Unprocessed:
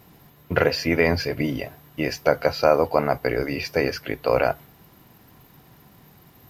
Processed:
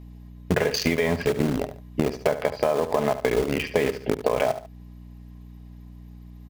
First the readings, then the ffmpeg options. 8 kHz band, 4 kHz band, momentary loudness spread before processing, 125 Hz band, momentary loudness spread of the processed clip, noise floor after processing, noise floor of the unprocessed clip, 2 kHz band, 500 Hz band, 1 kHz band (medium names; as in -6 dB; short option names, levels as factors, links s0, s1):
+4.0 dB, -2.0 dB, 8 LU, -0.5 dB, 5 LU, -44 dBFS, -53 dBFS, -4.0 dB, -1.5 dB, -3.5 dB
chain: -filter_complex "[0:a]lowpass=9600,aecho=1:1:4.8:0.47,afwtdn=0.0355,bandreject=f=1400:w=5,aeval=exprs='val(0)+0.00398*(sin(2*PI*60*n/s)+sin(2*PI*2*60*n/s)/2+sin(2*PI*3*60*n/s)/3+sin(2*PI*4*60*n/s)/4+sin(2*PI*5*60*n/s)/5)':c=same,asplit=2[s0][s1];[s1]acrusher=bits=3:mix=0:aa=0.000001,volume=0.501[s2];[s0][s2]amix=inputs=2:normalize=0,alimiter=limit=0.422:level=0:latency=1:release=127,asplit=2[s3][s4];[s4]aecho=0:1:72|144:0.2|0.0419[s5];[s3][s5]amix=inputs=2:normalize=0,acompressor=threshold=0.0501:ratio=6,volume=2.24"